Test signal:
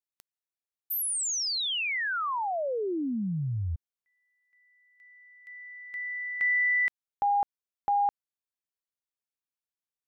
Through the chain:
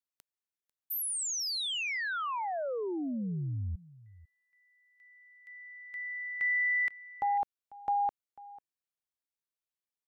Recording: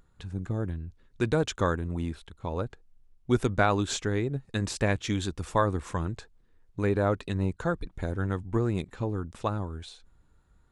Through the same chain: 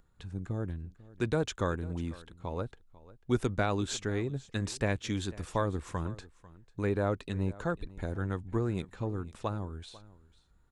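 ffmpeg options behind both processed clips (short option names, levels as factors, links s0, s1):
-filter_complex "[0:a]acrossover=split=660|1800[s0][s1][s2];[s1]alimiter=limit=0.0794:level=0:latency=1:release=412[s3];[s0][s3][s2]amix=inputs=3:normalize=0,aecho=1:1:495:0.1,volume=0.631"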